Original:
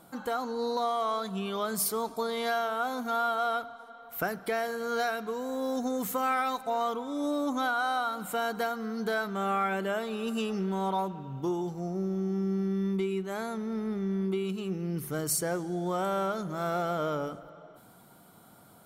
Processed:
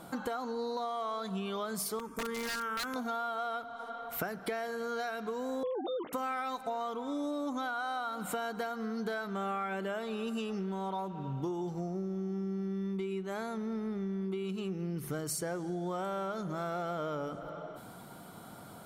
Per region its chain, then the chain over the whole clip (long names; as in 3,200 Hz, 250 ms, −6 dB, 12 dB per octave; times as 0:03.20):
0:01.99–0:02.96: phaser with its sweep stopped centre 1,700 Hz, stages 4 + wrap-around overflow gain 29 dB
0:05.63–0:06.13: three sine waves on the formant tracks + mains-hum notches 60/120/180/240/300 Hz
whole clip: high-shelf EQ 11,000 Hz −9.5 dB; downward compressor 6 to 1, threshold −41 dBFS; level +7 dB